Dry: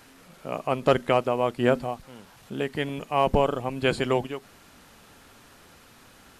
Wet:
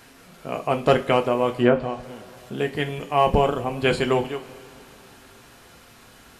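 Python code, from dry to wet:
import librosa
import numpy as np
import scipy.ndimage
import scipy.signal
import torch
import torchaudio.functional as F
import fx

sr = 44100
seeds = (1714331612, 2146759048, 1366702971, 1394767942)

y = fx.env_lowpass_down(x, sr, base_hz=1800.0, full_db=-15.5, at=(1.52, 2.03))
y = fx.rev_double_slope(y, sr, seeds[0], early_s=0.25, late_s=3.2, knee_db=-22, drr_db=4.5)
y = F.gain(torch.from_numpy(y), 2.0).numpy()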